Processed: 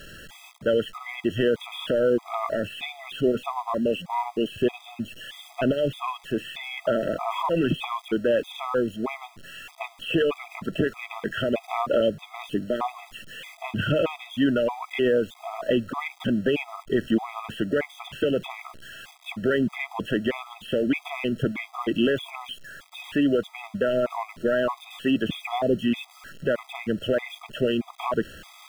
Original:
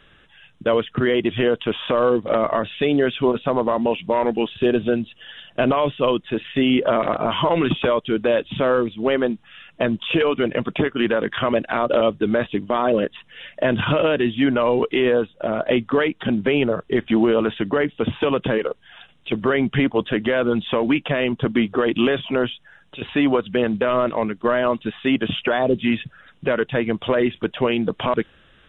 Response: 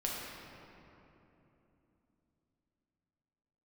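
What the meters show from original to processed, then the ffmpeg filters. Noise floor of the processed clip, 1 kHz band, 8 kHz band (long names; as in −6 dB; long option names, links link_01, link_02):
−52 dBFS, −6.5 dB, can't be measured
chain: -af "aeval=exprs='val(0)+0.5*0.0188*sgn(val(0))':channel_layout=same,afftfilt=real='re*gt(sin(2*PI*1.6*pts/sr)*(1-2*mod(floor(b*sr/1024/650),2)),0)':imag='im*gt(sin(2*PI*1.6*pts/sr)*(1-2*mod(floor(b*sr/1024/650),2)),0)':win_size=1024:overlap=0.75,volume=-3.5dB"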